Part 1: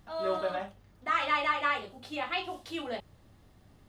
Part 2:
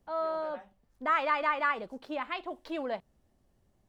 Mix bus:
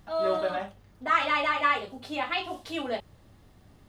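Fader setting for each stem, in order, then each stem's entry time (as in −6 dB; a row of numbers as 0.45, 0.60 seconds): +3.0, −3.0 decibels; 0.00, 0.00 seconds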